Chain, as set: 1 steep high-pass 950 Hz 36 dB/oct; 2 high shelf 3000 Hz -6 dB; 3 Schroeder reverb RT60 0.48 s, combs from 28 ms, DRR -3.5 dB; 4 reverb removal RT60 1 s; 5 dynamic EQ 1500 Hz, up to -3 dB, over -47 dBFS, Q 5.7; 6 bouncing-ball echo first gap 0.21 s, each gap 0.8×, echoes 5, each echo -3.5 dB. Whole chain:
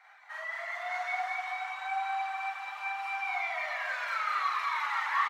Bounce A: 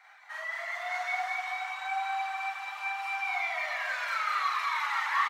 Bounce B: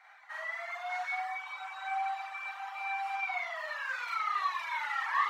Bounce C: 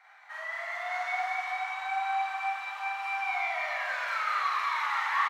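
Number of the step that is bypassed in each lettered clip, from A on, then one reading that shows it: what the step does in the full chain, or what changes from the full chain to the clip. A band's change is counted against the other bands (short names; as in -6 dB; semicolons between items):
2, 4 kHz band +3.0 dB; 6, loudness change -2.5 LU; 4, loudness change +2.0 LU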